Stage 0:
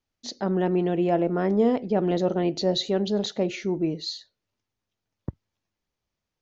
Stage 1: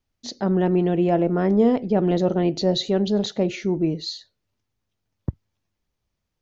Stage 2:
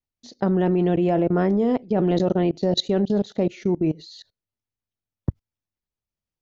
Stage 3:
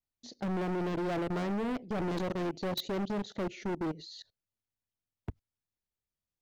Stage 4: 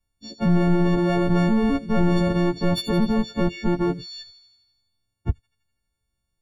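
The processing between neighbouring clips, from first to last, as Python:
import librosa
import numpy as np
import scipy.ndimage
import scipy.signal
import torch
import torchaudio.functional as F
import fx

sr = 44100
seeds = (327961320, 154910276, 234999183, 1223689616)

y1 = fx.low_shelf(x, sr, hz=170.0, db=8.0)
y1 = y1 * librosa.db_to_amplitude(1.5)
y2 = fx.level_steps(y1, sr, step_db=24)
y2 = y2 * librosa.db_to_amplitude(4.5)
y3 = np.clip(10.0 ** (26.5 / 20.0) * y2, -1.0, 1.0) / 10.0 ** (26.5 / 20.0)
y3 = y3 * librosa.db_to_amplitude(-4.5)
y4 = fx.freq_snap(y3, sr, grid_st=4)
y4 = fx.riaa(y4, sr, side='playback')
y4 = fx.echo_wet_highpass(y4, sr, ms=83, feedback_pct=64, hz=4400.0, wet_db=-10.5)
y4 = y4 * librosa.db_to_amplitude(6.5)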